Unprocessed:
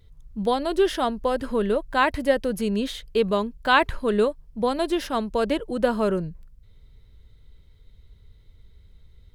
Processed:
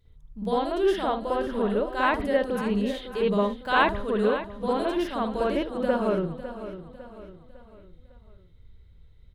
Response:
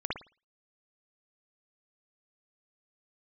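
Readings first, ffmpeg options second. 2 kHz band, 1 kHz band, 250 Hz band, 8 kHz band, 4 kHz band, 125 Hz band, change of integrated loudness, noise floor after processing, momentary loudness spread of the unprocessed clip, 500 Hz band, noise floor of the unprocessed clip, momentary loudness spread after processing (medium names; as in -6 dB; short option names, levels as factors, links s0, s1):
-2.5 dB, -2.0 dB, -1.5 dB, no reading, -5.0 dB, -1.0 dB, -2.0 dB, -54 dBFS, 6 LU, -2.0 dB, -53 dBFS, 13 LU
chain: -filter_complex "[0:a]aecho=1:1:553|1106|1659|2212:0.237|0.102|0.0438|0.0189[s0];[1:a]atrim=start_sample=2205,afade=t=out:st=0.16:d=0.01,atrim=end_sample=7497[s1];[s0][s1]afir=irnorm=-1:irlink=0,volume=0.398"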